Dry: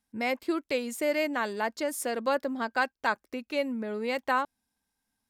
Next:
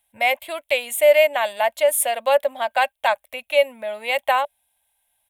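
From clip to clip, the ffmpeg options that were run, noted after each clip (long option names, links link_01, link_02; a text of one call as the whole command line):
ffmpeg -i in.wav -af "firequalizer=gain_entry='entry(100,0);entry(170,-13);entry(400,-18);entry(580,14);entry(1300,-1);entry(2200,11);entry(3400,14);entry(4800,-6);entry(9500,15)':delay=0.05:min_phase=1,volume=1.5dB" out.wav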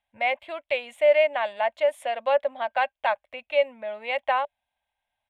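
ffmpeg -i in.wav -af "lowpass=2800,volume=-4.5dB" out.wav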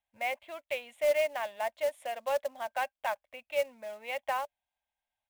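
ffmpeg -i in.wav -af "acrusher=bits=4:mode=log:mix=0:aa=0.000001,volume=-8.5dB" out.wav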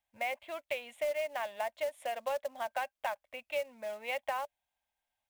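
ffmpeg -i in.wav -af "acompressor=threshold=-33dB:ratio=6,volume=2dB" out.wav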